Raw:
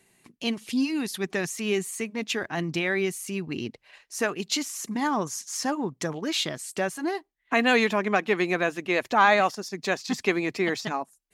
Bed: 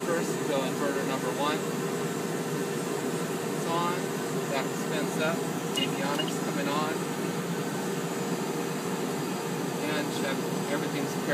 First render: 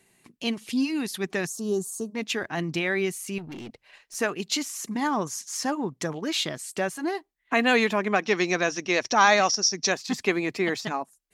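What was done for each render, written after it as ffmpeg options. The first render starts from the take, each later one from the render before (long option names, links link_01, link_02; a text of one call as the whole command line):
ffmpeg -i in.wav -filter_complex "[0:a]asettb=1/sr,asplit=3[link_01][link_02][link_03];[link_01]atrim=end=1.474[link_04];[link_02]atrim=start=1.47:end=2.15,asetpts=PTS-STARTPTS,afade=type=in:duration=0.004:curve=qsin,afade=type=out:start_time=0.676:duration=0.004:curve=qsin,asuperstop=centerf=2200:order=4:qfactor=0.6[link_05];[link_03]atrim=start=2.146[link_06];[link_04][link_05]acrossfade=duration=0.004:curve1=hsin:curve2=qsin[link_07];[link_07][link_06]acrossfade=duration=0.004:curve1=qsin:curve2=hsin,asettb=1/sr,asplit=3[link_08][link_09][link_10];[link_08]atrim=end=3.384[link_11];[link_09]atrim=start=3.38:end=4.15,asetpts=PTS-STARTPTS,afade=type=in:duration=0.004:curve=qsin,afade=type=out:start_time=0.766:duration=0.004:curve=qsin,aeval=exprs='(tanh(56.2*val(0)+0.2)-tanh(0.2))/56.2':channel_layout=same[link_12];[link_10]atrim=start=4.146[link_13];[link_11][link_12]acrossfade=duration=0.004:curve1=hsin:curve2=qsin[link_14];[link_14][link_13]acrossfade=duration=0.004:curve1=qsin:curve2=hsin,asettb=1/sr,asplit=3[link_15][link_16][link_17];[link_15]atrim=end=8.224[link_18];[link_16]atrim=start=8.22:end=9.92,asetpts=PTS-STARTPTS,afade=type=in:duration=0.004:curve=qsin,afade=type=out:start_time=1.696:duration=0.004:curve=qsin,lowpass=frequency=5700:width_type=q:width=15[link_19];[link_17]atrim=start=9.916[link_20];[link_18][link_19]acrossfade=duration=0.004:curve1=hsin:curve2=qsin[link_21];[link_21][link_20]acrossfade=duration=0.004:curve1=qsin:curve2=hsin" out.wav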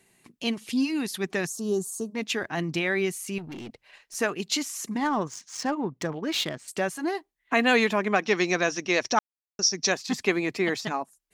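ffmpeg -i in.wav -filter_complex "[0:a]asettb=1/sr,asplit=3[link_01][link_02][link_03];[link_01]atrim=end=4.984[link_04];[link_02]atrim=start=4.98:end=6.68,asetpts=PTS-STARTPTS,afade=type=in:duration=0.004:curve=qsin,afade=type=out:start_time=1.696:duration=0.004:curve=qsin,adynamicsmooth=sensitivity=5:basefreq=3000[link_05];[link_03]atrim=start=6.676[link_06];[link_04][link_05]acrossfade=duration=0.004:curve1=hsin:curve2=qsin[link_07];[link_07][link_06]acrossfade=duration=0.004:curve1=qsin:curve2=hsin,asplit=3[link_08][link_09][link_10];[link_08]atrim=end=9.19,asetpts=PTS-STARTPTS,afade=type=out:start_time=9.186:duration=0.004:curve=hsin[link_11];[link_09]atrim=start=9.19:end=9.59,asetpts=PTS-STARTPTS,volume=0[link_12];[link_10]atrim=start=9.59,asetpts=PTS-STARTPTS,afade=type=in:duration=0.004:curve=hsin[link_13];[link_11][link_12][link_13]concat=n=3:v=0:a=1" out.wav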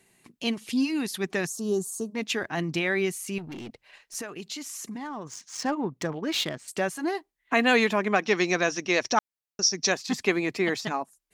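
ffmpeg -i in.wav -filter_complex "[0:a]asettb=1/sr,asplit=3[link_01][link_02][link_03];[link_01]atrim=end=4.194[link_04];[link_02]atrim=start=4.19:end=5.49,asetpts=PTS-STARTPTS,afade=type=in:duration=0.004:curve=qsin,afade=type=out:start_time=1.296:duration=0.004:curve=qsin,acompressor=threshold=-34dB:ratio=4:attack=3.2:release=140:knee=1:detection=peak[link_05];[link_03]atrim=start=5.486[link_06];[link_04][link_05]acrossfade=duration=0.004:curve1=hsin:curve2=qsin[link_07];[link_07][link_06]acrossfade=duration=0.004:curve1=qsin:curve2=hsin" out.wav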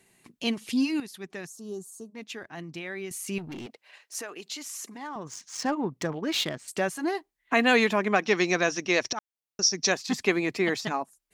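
ffmpeg -i in.wav -filter_complex "[0:a]asettb=1/sr,asplit=3[link_01][link_02][link_03];[link_01]atrim=end=3.664[link_04];[link_02]atrim=start=3.66:end=5.16,asetpts=PTS-STARTPTS,afade=type=in:duration=0.004:curve=qsin,afade=type=out:start_time=1.496:duration=0.004:curve=qsin,highpass=350[link_05];[link_03]atrim=start=5.156[link_06];[link_04][link_05]acrossfade=duration=0.004:curve1=hsin:curve2=qsin[link_07];[link_07][link_06]acrossfade=duration=0.004:curve1=qsin:curve2=hsin,asplit=4[link_08][link_09][link_10][link_11];[link_08]atrim=end=1.002[link_12];[link_09]atrim=start=0.998:end=3.112,asetpts=PTS-STARTPTS,volume=-10.5dB[link_13];[link_10]atrim=start=3.108:end=9.13,asetpts=PTS-STARTPTS,afade=type=out:start_time=6.018:duration=0.004:curve=hsin:silence=0.16788[link_14];[link_11]atrim=start=9.13,asetpts=PTS-STARTPTS,afade=type=in:duration=0.48:silence=0.16788[link_15];[link_12][link_13]acrossfade=duration=0.004:curve1=hsin:curve2=hsin[link_16];[link_14][link_15]concat=n=2:v=0:a=1[link_17];[link_16][link_17]acrossfade=duration=0.004:curve1=hsin:curve2=hsin" out.wav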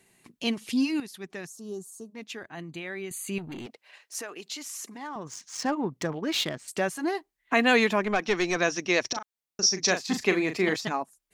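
ffmpeg -i in.wav -filter_complex "[0:a]asettb=1/sr,asplit=3[link_01][link_02][link_03];[link_01]atrim=end=2.374[link_04];[link_02]atrim=start=2.37:end=3.65,asetpts=PTS-STARTPTS,afade=type=in:duration=0.004:curve=qsin,afade=type=out:start_time=1.276:duration=0.004:curve=qsin,asuperstop=centerf=5400:order=20:qfactor=4.8[link_05];[link_03]atrim=start=3.646[link_06];[link_04][link_05]acrossfade=duration=0.004:curve1=hsin:curve2=qsin[link_07];[link_07][link_06]acrossfade=duration=0.004:curve1=qsin:curve2=hsin,asettb=1/sr,asplit=3[link_08][link_09][link_10];[link_08]atrim=end=8.024[link_11];[link_09]atrim=start=8.02:end=8.57,asetpts=PTS-STARTPTS,afade=type=in:duration=0.004:curve=qsin,afade=type=out:start_time=0.546:duration=0.004:curve=qsin,aeval=exprs='(tanh(5.62*val(0)+0.3)-tanh(0.3))/5.62':channel_layout=same[link_12];[link_10]atrim=start=8.566[link_13];[link_11][link_12]acrossfade=duration=0.004:curve1=hsin:curve2=qsin[link_14];[link_14][link_13]acrossfade=duration=0.004:curve1=qsin:curve2=hsin,asettb=1/sr,asplit=3[link_15][link_16][link_17];[link_15]atrim=end=9.084[link_18];[link_16]atrim=start=9.08:end=10.76,asetpts=PTS-STARTPTS,afade=type=in:duration=0.004:curve=qsin,afade=type=out:start_time=1.676:duration=0.004:curve=qsin,asplit=2[link_19][link_20];[link_20]adelay=38,volume=-8.5dB[link_21];[link_19][link_21]amix=inputs=2:normalize=0,atrim=end_sample=74088[link_22];[link_17]atrim=start=10.756[link_23];[link_18][link_22]acrossfade=duration=0.004:curve1=hsin:curve2=qsin[link_24];[link_24][link_23]acrossfade=duration=0.004:curve1=qsin:curve2=hsin" out.wav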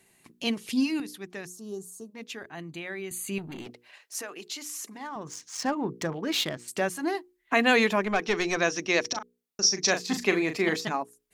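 ffmpeg -i in.wav -af "equalizer=frequency=13000:width_type=o:width=0.57:gain=3.5,bandreject=frequency=60:width_type=h:width=6,bandreject=frequency=120:width_type=h:width=6,bandreject=frequency=180:width_type=h:width=6,bandreject=frequency=240:width_type=h:width=6,bandreject=frequency=300:width_type=h:width=6,bandreject=frequency=360:width_type=h:width=6,bandreject=frequency=420:width_type=h:width=6,bandreject=frequency=480:width_type=h:width=6" out.wav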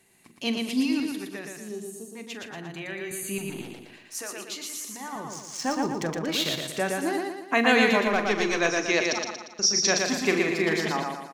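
ffmpeg -i in.wav -filter_complex "[0:a]asplit=2[link_01][link_02];[link_02]adelay=43,volume=-13dB[link_03];[link_01][link_03]amix=inputs=2:normalize=0,asplit=2[link_04][link_05];[link_05]aecho=0:1:117|234|351|468|585|702:0.668|0.314|0.148|0.0694|0.0326|0.0153[link_06];[link_04][link_06]amix=inputs=2:normalize=0" out.wav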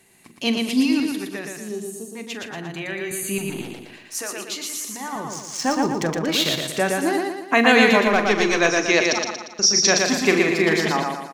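ffmpeg -i in.wav -af "volume=6dB,alimiter=limit=-3dB:level=0:latency=1" out.wav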